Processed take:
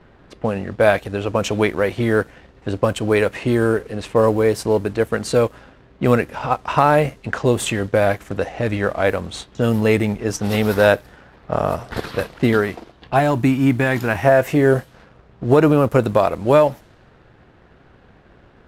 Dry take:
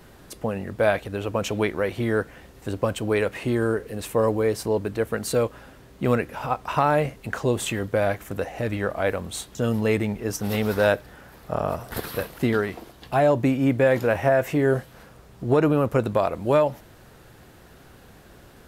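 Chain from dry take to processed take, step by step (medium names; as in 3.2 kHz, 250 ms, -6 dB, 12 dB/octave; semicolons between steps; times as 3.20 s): companding laws mixed up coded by A; level-controlled noise filter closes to 2.6 kHz, open at -20.5 dBFS; 13.19–14.25 s: peaking EQ 520 Hz -13.5 dB 0.48 oct; trim +6.5 dB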